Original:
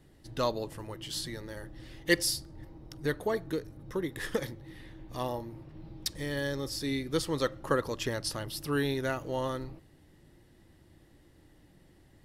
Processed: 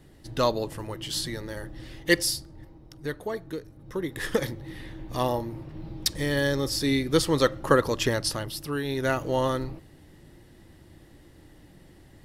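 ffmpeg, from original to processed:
-af "volume=25dB,afade=t=out:st=1.76:d=1.08:silence=0.421697,afade=t=in:st=3.77:d=0.83:silence=0.334965,afade=t=out:st=8.08:d=0.75:silence=0.316228,afade=t=in:st=8.83:d=0.31:silence=0.334965"

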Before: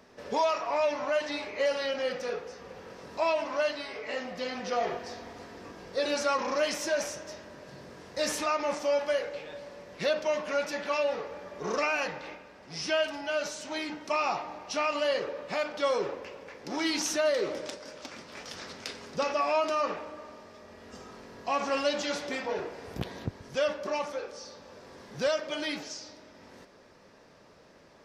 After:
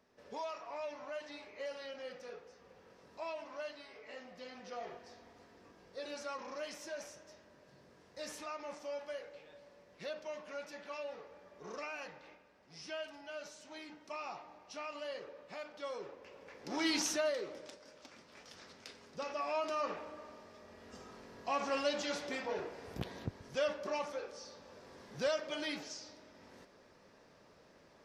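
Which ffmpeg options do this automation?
-af "volume=4dB,afade=t=in:st=16.17:d=0.79:silence=0.251189,afade=t=out:st=16.96:d=0.5:silence=0.316228,afade=t=in:st=19.13:d=0.97:silence=0.446684"

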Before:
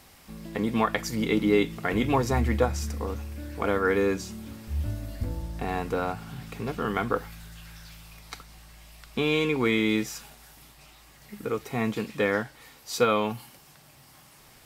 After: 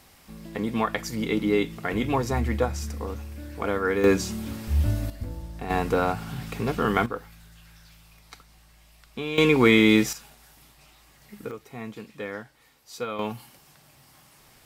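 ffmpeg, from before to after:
-af "asetnsamples=n=441:p=0,asendcmd='4.04 volume volume 7dB;5.1 volume volume -3dB;5.7 volume volume 5dB;7.06 volume volume -6dB;9.38 volume volume 7dB;10.13 volume volume -2.5dB;11.51 volume volume -9.5dB;13.19 volume volume -1.5dB',volume=-1dB"

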